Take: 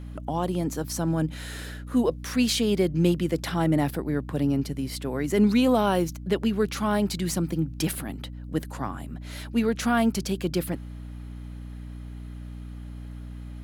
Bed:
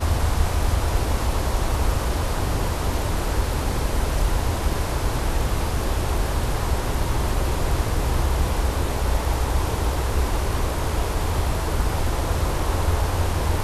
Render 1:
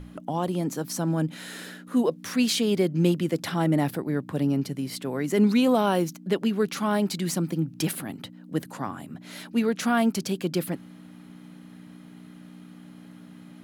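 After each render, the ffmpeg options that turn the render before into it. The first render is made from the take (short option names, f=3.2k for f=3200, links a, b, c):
-af "bandreject=f=60:t=h:w=6,bandreject=f=120:t=h:w=6"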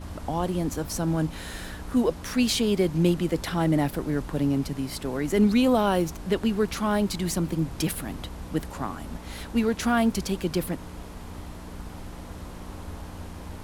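-filter_complex "[1:a]volume=-17.5dB[a];[0:a][a]amix=inputs=2:normalize=0"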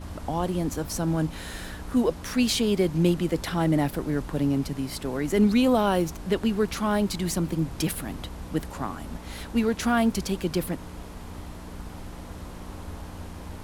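-af anull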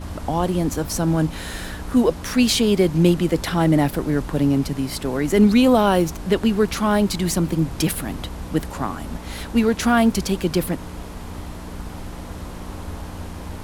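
-af "volume=6dB"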